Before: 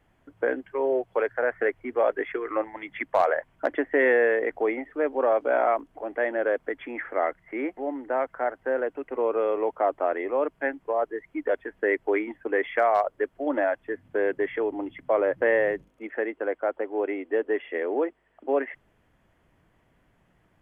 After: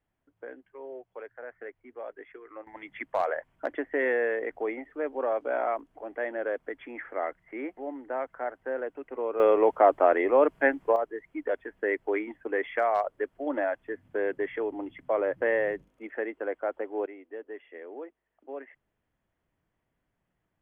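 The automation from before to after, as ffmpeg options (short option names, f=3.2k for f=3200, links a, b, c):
-af "asetnsamples=n=441:p=0,asendcmd='2.67 volume volume -6dB;9.4 volume volume 4.5dB;10.96 volume volume -4dB;17.06 volume volume -15dB',volume=-17dB"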